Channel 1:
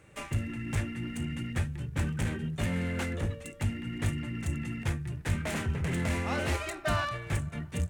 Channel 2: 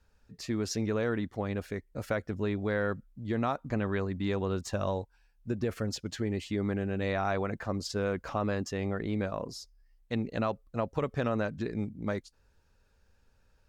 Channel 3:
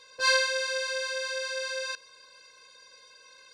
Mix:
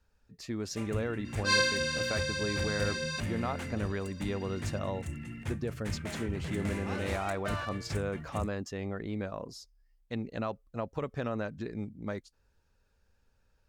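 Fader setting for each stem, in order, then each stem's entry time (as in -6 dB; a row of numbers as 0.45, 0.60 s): -6.5, -4.0, -2.5 dB; 0.60, 0.00, 1.25 s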